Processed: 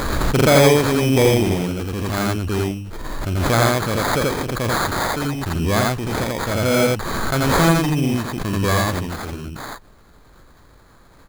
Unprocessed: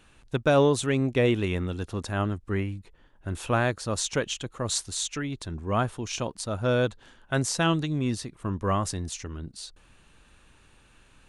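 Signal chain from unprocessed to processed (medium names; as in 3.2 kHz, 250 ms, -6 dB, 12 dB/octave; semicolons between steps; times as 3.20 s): dynamic bell 4 kHz, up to +5 dB, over -46 dBFS, Q 1.8; sample-rate reducer 2.8 kHz, jitter 0%; on a send: loudspeakers at several distances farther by 15 m -11 dB, 29 m 0 dB; on the sum: swell ahead of each attack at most 23 dB/s; trim +4 dB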